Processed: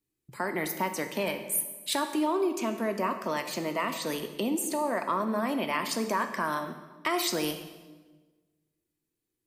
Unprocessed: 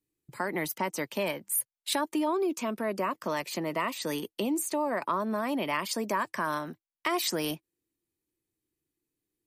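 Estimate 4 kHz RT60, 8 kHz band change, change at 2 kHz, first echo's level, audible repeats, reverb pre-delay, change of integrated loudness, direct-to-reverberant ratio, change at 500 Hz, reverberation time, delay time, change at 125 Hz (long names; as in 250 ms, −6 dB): 1.1 s, +1.0 dB, +1.0 dB, no echo audible, no echo audible, 4 ms, +1.0 dB, 6.5 dB, +0.5 dB, 1.3 s, no echo audible, +0.5 dB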